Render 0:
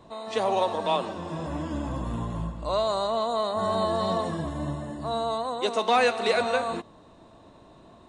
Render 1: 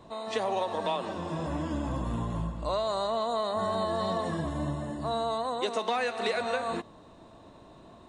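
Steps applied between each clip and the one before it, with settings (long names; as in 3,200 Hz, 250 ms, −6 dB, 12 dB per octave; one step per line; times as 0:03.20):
dynamic equaliser 1,800 Hz, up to +4 dB, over −49 dBFS, Q 4.8
downward compressor 6 to 1, threshold −26 dBFS, peak gain reduction 9 dB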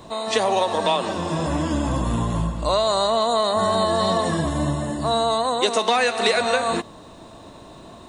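high-shelf EQ 4,100 Hz +9.5 dB
level +9 dB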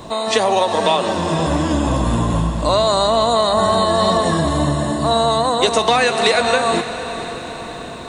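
in parallel at −2 dB: downward compressor, threshold −28 dBFS, peak gain reduction 12.5 dB
on the sum: feedback delay with all-pass diffusion 487 ms, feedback 61%, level −11.5 dB
level +2.5 dB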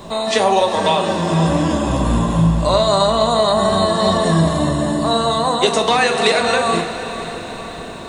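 bit reduction 10 bits
convolution reverb RT60 0.50 s, pre-delay 5 ms, DRR 5 dB
level −1 dB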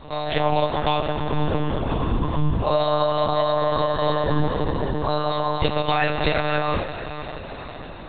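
one-pitch LPC vocoder at 8 kHz 150 Hz
level −5.5 dB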